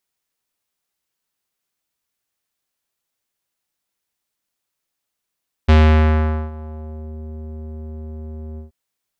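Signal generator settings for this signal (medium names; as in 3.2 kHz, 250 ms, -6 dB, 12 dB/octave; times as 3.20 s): synth note square D#2 12 dB/octave, low-pass 440 Hz, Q 1.1, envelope 3 oct, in 1.47 s, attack 15 ms, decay 0.81 s, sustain -22.5 dB, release 0.13 s, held 2.90 s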